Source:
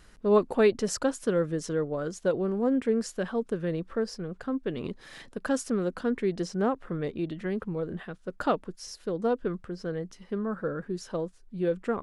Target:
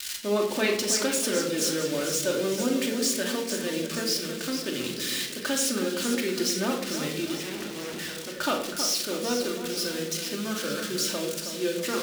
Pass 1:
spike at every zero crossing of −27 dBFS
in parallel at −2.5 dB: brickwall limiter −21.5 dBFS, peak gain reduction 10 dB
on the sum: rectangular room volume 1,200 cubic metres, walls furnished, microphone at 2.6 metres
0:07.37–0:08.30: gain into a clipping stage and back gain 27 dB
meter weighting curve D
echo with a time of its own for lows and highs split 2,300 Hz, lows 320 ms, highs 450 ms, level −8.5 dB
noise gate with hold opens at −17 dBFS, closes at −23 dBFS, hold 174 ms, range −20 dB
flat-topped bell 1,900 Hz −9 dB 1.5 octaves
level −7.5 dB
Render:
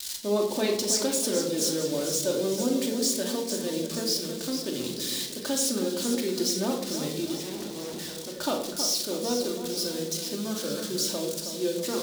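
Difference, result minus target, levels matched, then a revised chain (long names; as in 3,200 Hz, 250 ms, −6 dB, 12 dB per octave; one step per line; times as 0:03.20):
2,000 Hz band −8.5 dB
spike at every zero crossing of −27 dBFS
in parallel at −2.5 dB: brickwall limiter −21.5 dBFS, peak gain reduction 10 dB
on the sum: rectangular room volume 1,200 cubic metres, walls furnished, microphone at 2.6 metres
0:07.37–0:08.30: gain into a clipping stage and back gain 27 dB
meter weighting curve D
echo with a time of its own for lows and highs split 2,300 Hz, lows 320 ms, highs 450 ms, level −8.5 dB
noise gate with hold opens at −17 dBFS, closes at −23 dBFS, hold 174 ms, range −20 dB
level −7.5 dB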